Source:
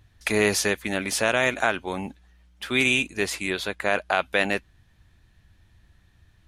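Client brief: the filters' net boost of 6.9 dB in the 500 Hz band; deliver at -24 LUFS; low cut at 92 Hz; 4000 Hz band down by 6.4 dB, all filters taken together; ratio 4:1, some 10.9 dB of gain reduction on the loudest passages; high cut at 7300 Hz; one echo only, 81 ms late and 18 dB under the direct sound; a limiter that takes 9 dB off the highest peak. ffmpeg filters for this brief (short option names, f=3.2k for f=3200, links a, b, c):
-af "highpass=92,lowpass=7.3k,equalizer=f=500:t=o:g=9,equalizer=f=4k:t=o:g=-8.5,acompressor=threshold=-26dB:ratio=4,alimiter=limit=-21.5dB:level=0:latency=1,aecho=1:1:81:0.126,volume=10dB"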